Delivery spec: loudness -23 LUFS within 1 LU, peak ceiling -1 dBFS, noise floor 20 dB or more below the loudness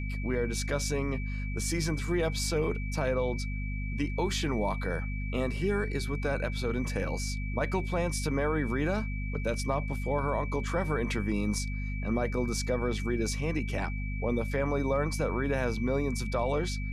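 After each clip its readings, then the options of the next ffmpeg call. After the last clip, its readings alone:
hum 50 Hz; highest harmonic 250 Hz; hum level -31 dBFS; steady tone 2.3 kHz; tone level -42 dBFS; loudness -31.0 LUFS; peak level -15.5 dBFS; loudness target -23.0 LUFS
-> -af "bandreject=f=50:t=h:w=6,bandreject=f=100:t=h:w=6,bandreject=f=150:t=h:w=6,bandreject=f=200:t=h:w=6,bandreject=f=250:t=h:w=6"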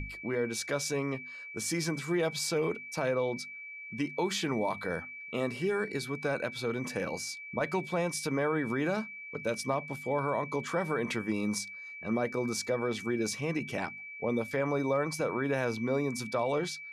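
hum not found; steady tone 2.3 kHz; tone level -42 dBFS
-> -af "bandreject=f=2300:w=30"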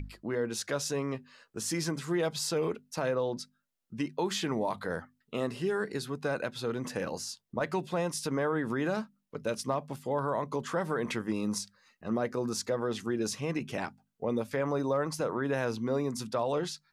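steady tone not found; loudness -33.0 LUFS; peak level -17.5 dBFS; loudness target -23.0 LUFS
-> -af "volume=3.16"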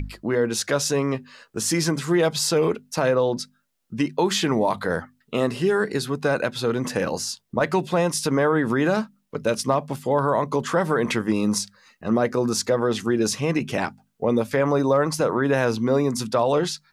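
loudness -23.0 LUFS; peak level -7.5 dBFS; noise floor -67 dBFS

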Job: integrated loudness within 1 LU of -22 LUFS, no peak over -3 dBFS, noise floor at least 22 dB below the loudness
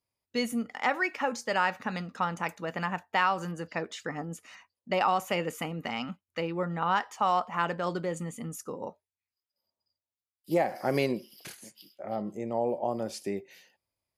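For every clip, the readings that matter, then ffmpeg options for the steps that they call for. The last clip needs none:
loudness -31.0 LUFS; peak level -12.5 dBFS; loudness target -22.0 LUFS
-> -af "volume=2.82"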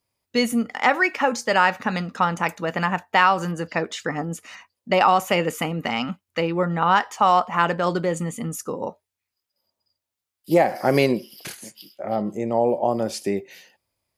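loudness -22.0 LUFS; peak level -3.5 dBFS; noise floor -85 dBFS

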